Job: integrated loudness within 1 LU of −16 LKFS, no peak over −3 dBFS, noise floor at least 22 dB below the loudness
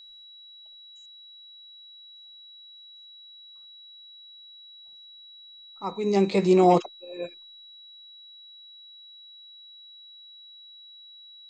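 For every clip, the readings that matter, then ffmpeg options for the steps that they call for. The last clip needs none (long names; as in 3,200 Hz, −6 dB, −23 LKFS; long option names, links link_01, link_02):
interfering tone 3,900 Hz; level of the tone −46 dBFS; integrated loudness −23.5 LKFS; sample peak −7.0 dBFS; target loudness −16.0 LKFS
→ -af "bandreject=frequency=3900:width=30"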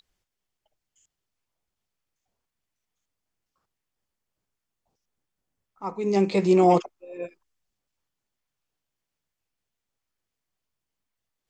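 interfering tone none found; integrated loudness −21.5 LKFS; sample peak −7.0 dBFS; target loudness −16.0 LKFS
→ -af "volume=5.5dB,alimiter=limit=-3dB:level=0:latency=1"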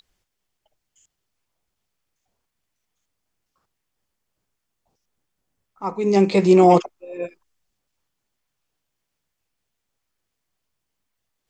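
integrated loudness −16.0 LKFS; sample peak −3.0 dBFS; background noise floor −79 dBFS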